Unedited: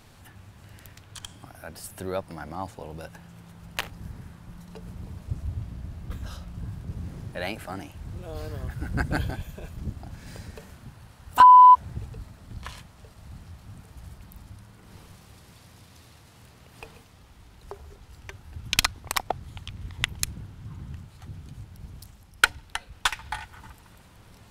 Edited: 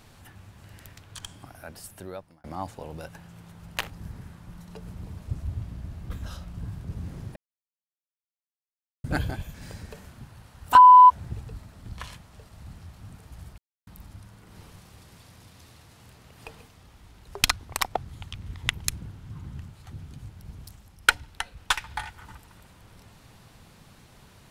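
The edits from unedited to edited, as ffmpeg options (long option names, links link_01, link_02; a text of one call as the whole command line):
ffmpeg -i in.wav -filter_complex "[0:a]asplit=7[link_01][link_02][link_03][link_04][link_05][link_06][link_07];[link_01]atrim=end=2.44,asetpts=PTS-STARTPTS,afade=type=out:start_time=1.24:duration=1.2:curve=qsin[link_08];[link_02]atrim=start=2.44:end=7.36,asetpts=PTS-STARTPTS,afade=type=in:duration=0.004:curve=hsin,afade=type=out:start_time=4.916:duration=0.004:curve=hsin[link_09];[link_03]atrim=start=7.36:end=9.04,asetpts=PTS-STARTPTS,volume=0[link_10];[link_04]atrim=start=9.04:end=9.542,asetpts=PTS-STARTPTS,afade=type=in:duration=0.004:curve=hsin[link_11];[link_05]atrim=start=10.188:end=14.23,asetpts=PTS-STARTPTS,afade=type=out:start_time=4.038:duration=0.004:curve=hsin,apad=pad_dur=0.29[link_12];[link_06]atrim=start=14.23:end=17.792,asetpts=PTS-STARTPTS,afade=type=in:duration=0.004:curve=hsin[link_13];[link_07]atrim=start=18.778[link_14];[link_08][link_09][link_10][link_11]concat=n=4:v=0:a=1[link_15];[link_12][link_13]concat=n=2:v=0:a=1[link_16];[link_15][link_16]acrossfade=duration=0.004:curve1=hsin:curve2=hsin[link_17];[link_17][link_14]acrossfade=duration=0.004:curve1=hsin:curve2=hsin" out.wav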